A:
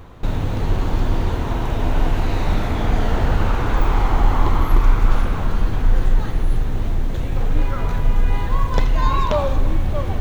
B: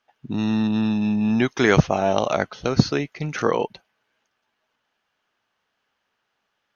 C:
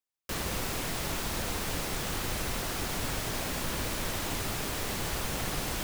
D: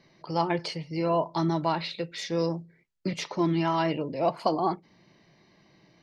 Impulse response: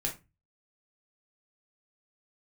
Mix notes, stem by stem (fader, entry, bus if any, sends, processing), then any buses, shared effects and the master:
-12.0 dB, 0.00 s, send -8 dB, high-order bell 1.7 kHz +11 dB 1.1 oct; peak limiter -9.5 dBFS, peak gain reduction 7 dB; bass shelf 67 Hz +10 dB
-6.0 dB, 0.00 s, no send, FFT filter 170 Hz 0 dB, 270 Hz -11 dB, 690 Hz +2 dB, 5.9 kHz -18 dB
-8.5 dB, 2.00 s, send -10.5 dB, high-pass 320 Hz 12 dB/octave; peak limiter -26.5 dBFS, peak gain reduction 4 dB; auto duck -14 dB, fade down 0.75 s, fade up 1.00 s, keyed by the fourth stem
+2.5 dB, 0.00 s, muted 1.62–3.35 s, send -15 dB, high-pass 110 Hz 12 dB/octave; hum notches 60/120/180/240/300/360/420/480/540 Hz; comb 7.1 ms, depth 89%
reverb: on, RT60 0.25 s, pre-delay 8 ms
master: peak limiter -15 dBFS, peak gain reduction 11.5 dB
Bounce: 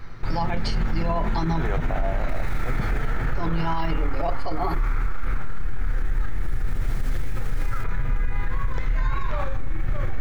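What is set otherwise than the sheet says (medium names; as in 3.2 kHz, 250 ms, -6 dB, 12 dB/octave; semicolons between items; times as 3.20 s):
stem A: send -8 dB -> -2 dB; stem C: send -10.5 dB -> -20.5 dB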